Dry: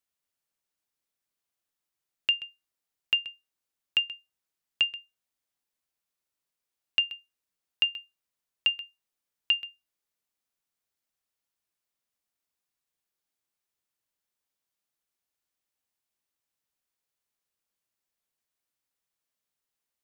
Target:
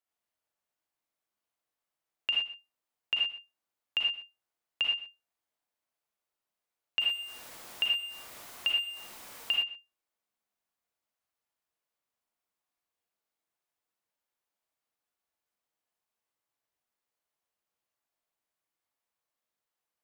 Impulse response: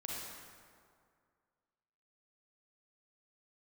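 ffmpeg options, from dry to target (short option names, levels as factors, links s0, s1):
-filter_complex "[0:a]asettb=1/sr,asplit=3[s0][s1][s2];[s0]atrim=end=7.004[s3];[s1]atrim=start=7:end=9.52,asetpts=PTS-STARTPTS,afade=t=in:d=0.004:c=qsin,afade=t=out:st=2.516:d=0.004:c=qsin,aeval=exprs='val(0)+0.5*0.0133*sgn(val(0))':c=same[s4];[s2]atrim=start=9.516[s5];[s3][s4]acrossfade=d=0.004:c1=hsin:c2=qsin[s6];[s6][s5]acrossfade=d=0.004:c1=qsin:c2=hsin,equalizer=f=810:t=o:w=2.8:g=8[s7];[1:a]atrim=start_sample=2205,afade=t=out:st=0.17:d=0.01,atrim=end_sample=7938[s8];[s7][s8]afir=irnorm=-1:irlink=0,volume=0.708"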